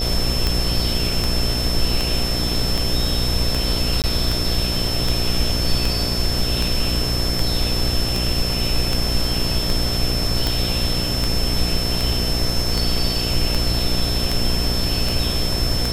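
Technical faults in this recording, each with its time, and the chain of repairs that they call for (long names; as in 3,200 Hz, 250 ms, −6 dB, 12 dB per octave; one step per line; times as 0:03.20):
mains buzz 60 Hz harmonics 12 −25 dBFS
scratch tick 78 rpm
whistle 5,300 Hz −24 dBFS
0:04.02–0:04.04: drop-out 18 ms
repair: click removal
hum removal 60 Hz, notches 12
notch filter 5,300 Hz, Q 30
repair the gap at 0:04.02, 18 ms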